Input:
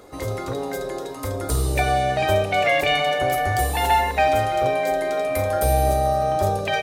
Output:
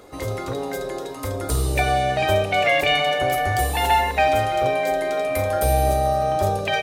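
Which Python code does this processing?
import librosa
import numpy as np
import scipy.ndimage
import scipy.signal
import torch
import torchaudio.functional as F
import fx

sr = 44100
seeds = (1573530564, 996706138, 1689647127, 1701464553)

y = fx.peak_eq(x, sr, hz=2800.0, db=2.5, octaves=0.77)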